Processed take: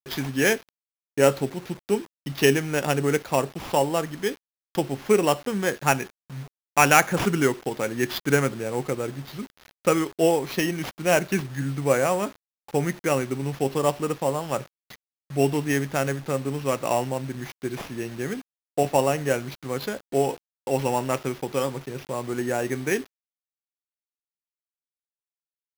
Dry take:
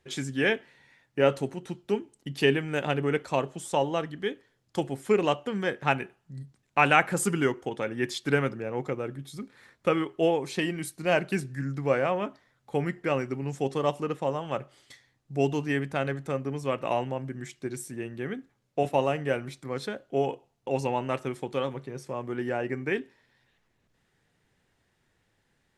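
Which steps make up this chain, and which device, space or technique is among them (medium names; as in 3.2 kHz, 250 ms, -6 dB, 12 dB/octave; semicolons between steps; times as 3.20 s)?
early 8-bit sampler (sample-rate reducer 8.3 kHz, jitter 0%; bit crusher 8-bit); trim +4 dB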